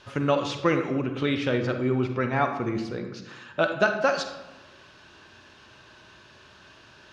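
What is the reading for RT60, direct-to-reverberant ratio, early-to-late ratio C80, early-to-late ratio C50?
1.1 s, 6.0 dB, 9.5 dB, 7.5 dB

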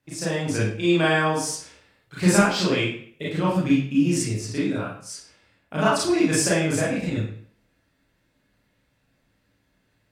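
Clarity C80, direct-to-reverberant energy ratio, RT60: 5.5 dB, −8.0 dB, 0.55 s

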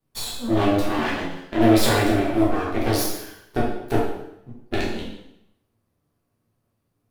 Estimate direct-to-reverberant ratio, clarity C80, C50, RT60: −6.5 dB, 5.0 dB, 1.5 dB, 0.80 s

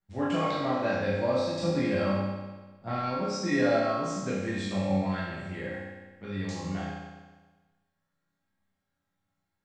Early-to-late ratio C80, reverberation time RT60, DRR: 1.5 dB, 1.3 s, −10.5 dB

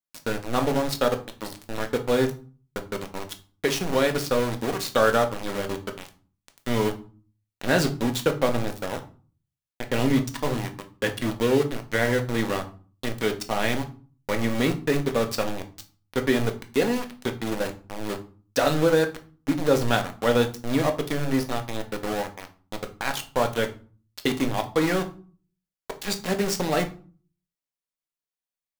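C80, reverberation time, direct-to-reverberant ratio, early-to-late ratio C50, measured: 19.5 dB, 0.40 s, 5.0 dB, 13.5 dB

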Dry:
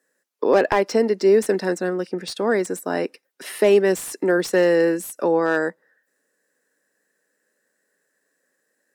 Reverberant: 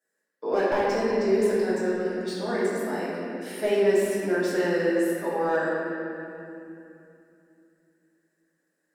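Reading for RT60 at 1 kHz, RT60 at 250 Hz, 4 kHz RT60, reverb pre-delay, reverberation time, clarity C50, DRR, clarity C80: 2.6 s, 3.8 s, 2.0 s, 6 ms, 2.8 s, −2.5 dB, −9.0 dB, −1.0 dB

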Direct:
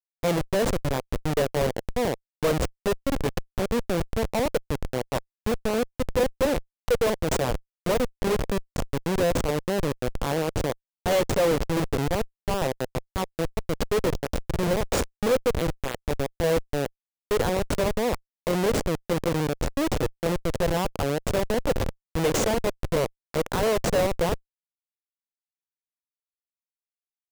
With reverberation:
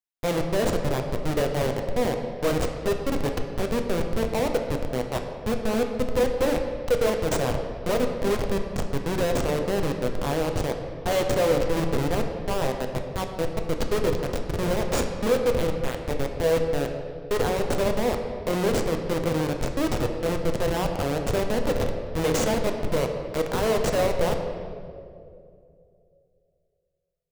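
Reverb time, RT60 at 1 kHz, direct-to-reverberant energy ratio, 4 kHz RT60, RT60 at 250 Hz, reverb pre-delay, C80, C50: 2.5 s, 2.0 s, 3.5 dB, 1.4 s, 2.7 s, 8 ms, 7.0 dB, 6.0 dB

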